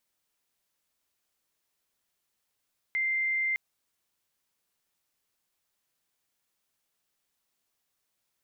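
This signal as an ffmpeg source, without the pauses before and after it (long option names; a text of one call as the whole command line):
ffmpeg -f lavfi -i "aevalsrc='0.0531*sin(2*PI*2090*t)':duration=0.61:sample_rate=44100" out.wav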